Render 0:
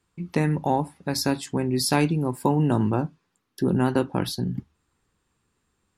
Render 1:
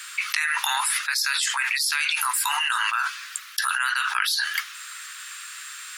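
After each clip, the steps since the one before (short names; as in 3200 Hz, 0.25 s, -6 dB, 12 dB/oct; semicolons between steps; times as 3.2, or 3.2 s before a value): steep high-pass 1300 Hz 48 dB/oct; fast leveller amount 100%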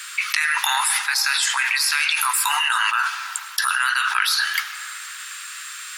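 digital reverb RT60 3 s, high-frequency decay 0.35×, pre-delay 60 ms, DRR 10.5 dB; gain +3.5 dB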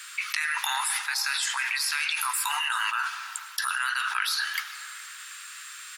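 echo 0.416 s -21 dB; gain -7.5 dB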